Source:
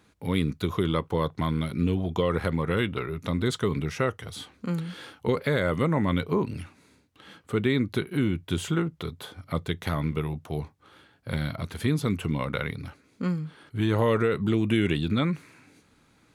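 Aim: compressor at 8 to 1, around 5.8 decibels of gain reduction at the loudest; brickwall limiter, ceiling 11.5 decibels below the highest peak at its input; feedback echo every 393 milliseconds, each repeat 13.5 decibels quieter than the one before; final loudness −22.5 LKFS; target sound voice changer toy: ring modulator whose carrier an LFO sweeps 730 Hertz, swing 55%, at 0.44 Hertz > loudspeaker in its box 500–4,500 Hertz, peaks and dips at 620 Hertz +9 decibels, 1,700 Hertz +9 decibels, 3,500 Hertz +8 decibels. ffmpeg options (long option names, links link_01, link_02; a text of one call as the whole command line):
ffmpeg -i in.wav -af "acompressor=threshold=-25dB:ratio=8,alimiter=limit=-23.5dB:level=0:latency=1,aecho=1:1:393|786:0.211|0.0444,aeval=exprs='val(0)*sin(2*PI*730*n/s+730*0.55/0.44*sin(2*PI*0.44*n/s))':channel_layout=same,highpass=500,equalizer=frequency=620:width_type=q:width=4:gain=9,equalizer=frequency=1700:width_type=q:width=4:gain=9,equalizer=frequency=3500:width_type=q:width=4:gain=8,lowpass=frequency=4500:width=0.5412,lowpass=frequency=4500:width=1.3066,volume=13dB" out.wav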